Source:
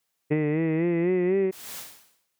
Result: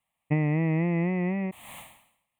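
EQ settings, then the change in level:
high-frequency loss of the air 220 metres
high shelf with overshoot 6,800 Hz +12.5 dB, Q 3
phaser with its sweep stopped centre 1,500 Hz, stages 6
+6.0 dB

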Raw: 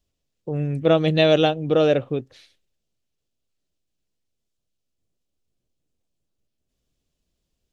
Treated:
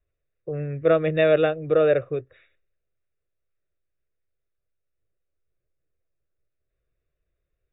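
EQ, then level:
linear-phase brick-wall low-pass 3,800 Hz
high-shelf EQ 2,400 Hz +7.5 dB
phaser with its sweep stopped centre 870 Hz, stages 6
0.0 dB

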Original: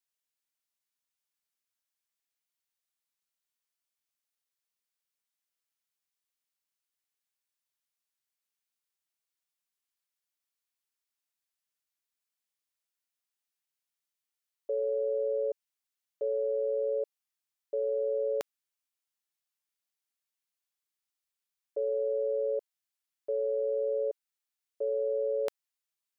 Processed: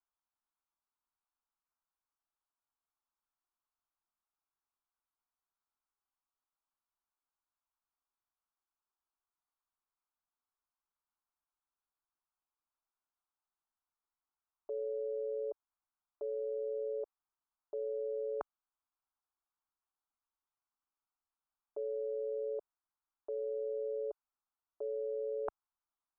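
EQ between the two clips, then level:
Butterworth low-pass 1,700 Hz
parametric band 250 Hz −12 dB 2.6 octaves
phaser with its sweep stopped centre 520 Hz, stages 6
+9.5 dB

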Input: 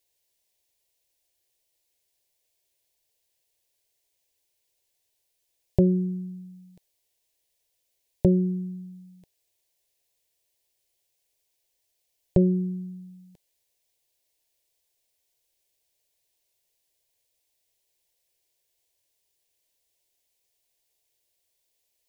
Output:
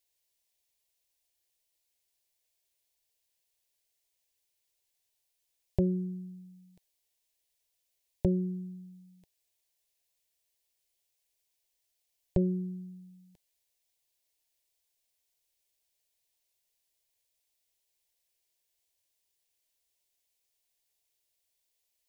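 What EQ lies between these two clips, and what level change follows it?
octave-band graphic EQ 125/250/500 Hz −4/−3/−4 dB
−4.0 dB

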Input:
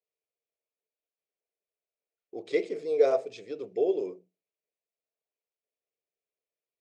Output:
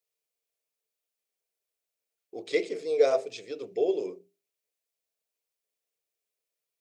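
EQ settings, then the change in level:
high-shelf EQ 2,500 Hz +9 dB
mains-hum notches 50/100/150/200/250/300/350/400 Hz
0.0 dB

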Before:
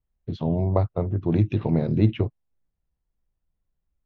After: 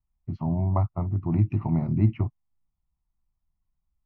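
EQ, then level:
high-frequency loss of the air 82 metres
high shelf with overshoot 2,200 Hz −9 dB, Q 1.5
phaser with its sweep stopped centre 2,400 Hz, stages 8
0.0 dB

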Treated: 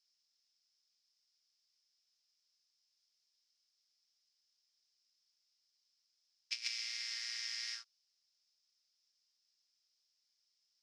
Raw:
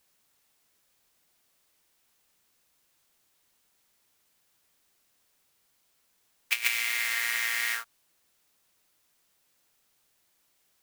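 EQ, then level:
resonant band-pass 5,200 Hz, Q 9.2
high-frequency loss of the air 77 metres
+8.0 dB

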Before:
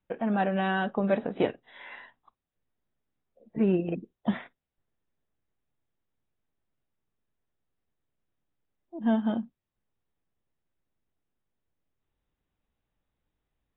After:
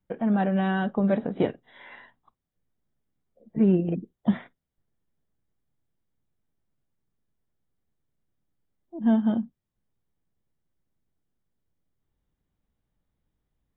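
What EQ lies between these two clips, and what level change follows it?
parametric band 170 Hz +3 dB 0.9 octaves
low-shelf EQ 370 Hz +6.5 dB
notch filter 2,600 Hz, Q 12
−2.0 dB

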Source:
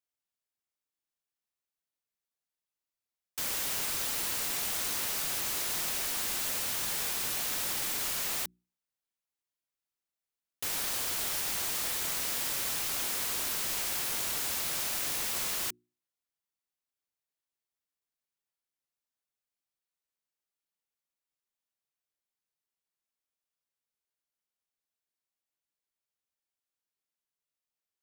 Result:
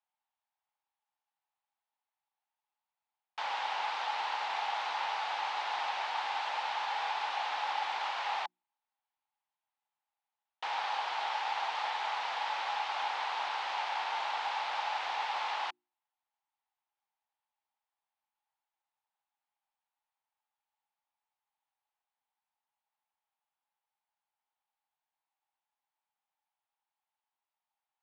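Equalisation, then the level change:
high-pass with resonance 840 Hz, resonance Q 8.2
low-pass filter 3,700 Hz 24 dB per octave
0.0 dB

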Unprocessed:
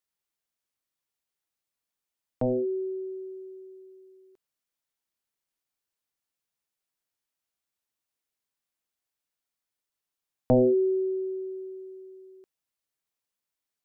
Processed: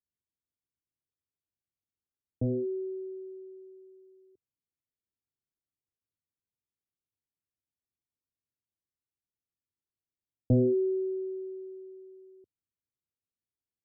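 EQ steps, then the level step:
transistor ladder low-pass 500 Hz, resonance 25%
parametric band 92 Hz +12 dB 1.3 octaves
0.0 dB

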